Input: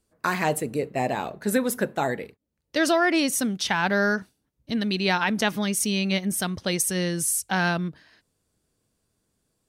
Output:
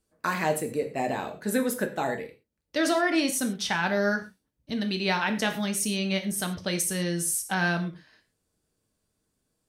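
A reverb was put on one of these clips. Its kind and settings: gated-style reverb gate 150 ms falling, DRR 5 dB; trim -4 dB

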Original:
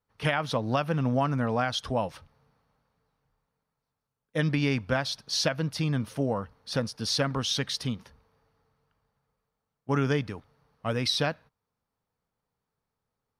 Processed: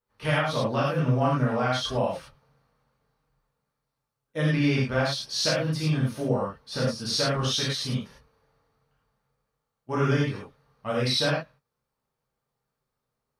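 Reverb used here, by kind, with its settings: gated-style reverb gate 130 ms flat, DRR -7 dB; trim -5.5 dB

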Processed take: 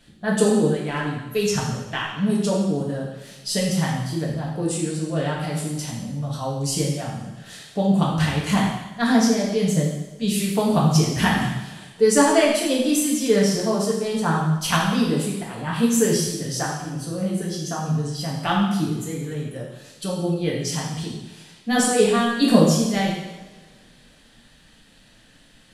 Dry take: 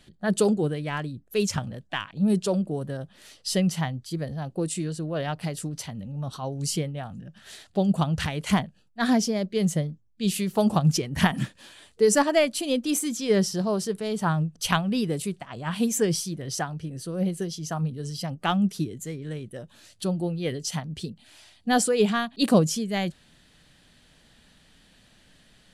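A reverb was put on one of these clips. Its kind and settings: two-slope reverb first 0.98 s, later 3 s, from -24 dB, DRR -4.5 dB; trim -1 dB

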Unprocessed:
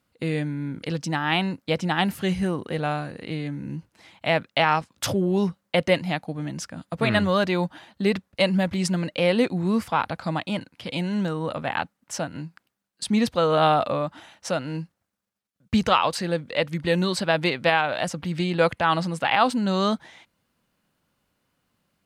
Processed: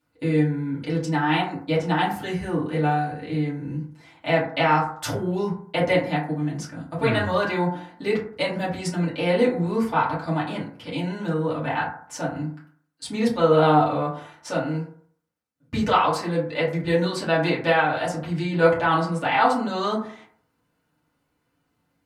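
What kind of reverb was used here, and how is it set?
FDN reverb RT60 0.56 s, low-frequency decay 0.9×, high-frequency decay 0.35×, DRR -8 dB; trim -8 dB

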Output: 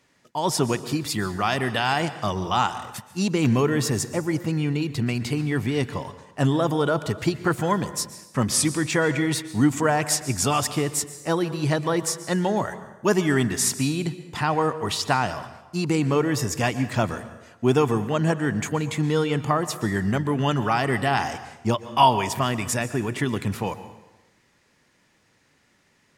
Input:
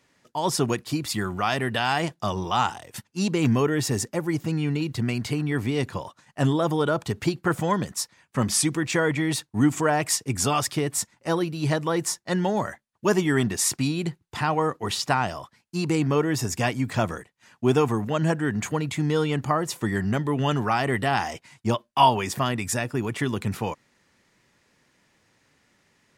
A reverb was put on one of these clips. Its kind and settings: plate-style reverb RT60 1 s, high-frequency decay 0.8×, pre-delay 110 ms, DRR 13 dB; trim +1 dB

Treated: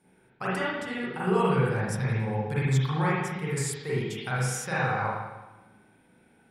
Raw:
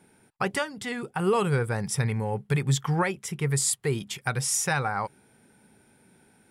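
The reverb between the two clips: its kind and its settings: spring tank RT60 1.1 s, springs 38/54 ms, chirp 70 ms, DRR -8.5 dB; trim -9 dB

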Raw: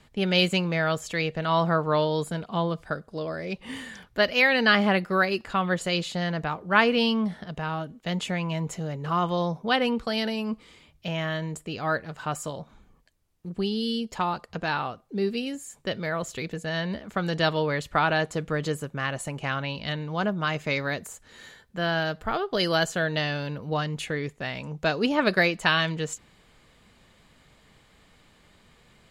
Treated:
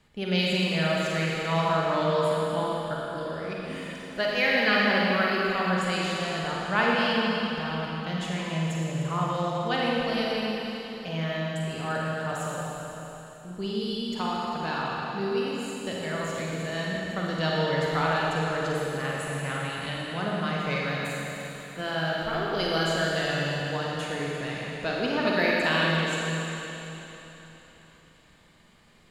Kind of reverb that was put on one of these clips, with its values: Schroeder reverb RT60 3.7 s, DRR -4.5 dB; trim -6.5 dB

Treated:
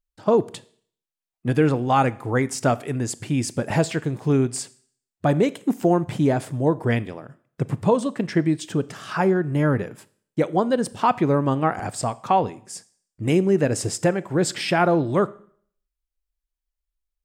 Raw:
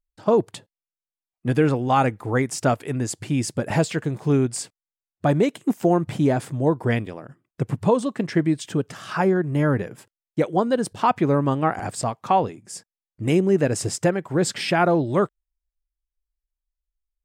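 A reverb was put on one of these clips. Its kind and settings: Schroeder reverb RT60 0.56 s, combs from 26 ms, DRR 18 dB

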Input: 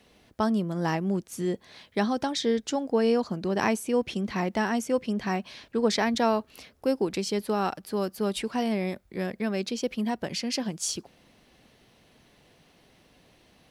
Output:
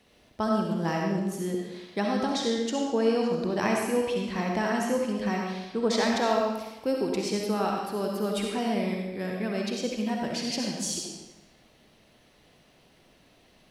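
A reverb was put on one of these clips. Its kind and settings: algorithmic reverb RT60 1 s, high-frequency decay 0.95×, pre-delay 25 ms, DRR -0.5 dB; trim -3 dB

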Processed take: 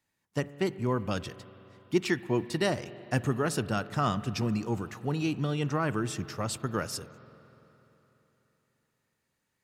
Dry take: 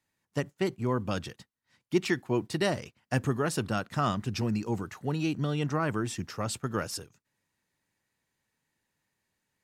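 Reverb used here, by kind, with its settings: spring tank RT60 3.6 s, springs 42/49 ms, chirp 40 ms, DRR 15.5 dB

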